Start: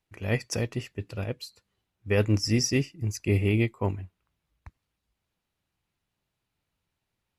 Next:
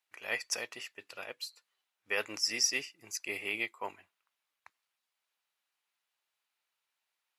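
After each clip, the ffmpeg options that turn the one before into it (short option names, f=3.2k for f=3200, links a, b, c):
-af "highpass=940"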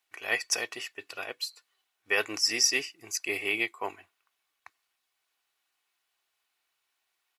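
-af "aecho=1:1:2.7:0.39,volume=5.5dB"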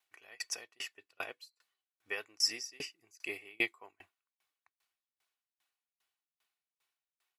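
-af "aeval=exprs='val(0)*pow(10,-33*if(lt(mod(2.5*n/s,1),2*abs(2.5)/1000),1-mod(2.5*n/s,1)/(2*abs(2.5)/1000),(mod(2.5*n/s,1)-2*abs(2.5)/1000)/(1-2*abs(2.5)/1000))/20)':c=same"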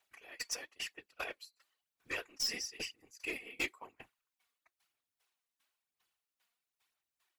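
-af "aeval=exprs='(tanh(44.7*val(0)+0.1)-tanh(0.1))/44.7':c=same,afftfilt=real='hypot(re,im)*cos(2*PI*random(0))':imag='hypot(re,im)*sin(2*PI*random(1))':win_size=512:overlap=0.75,aphaser=in_gain=1:out_gain=1:delay=4.3:decay=0.41:speed=1:type=sinusoidal,volume=8dB"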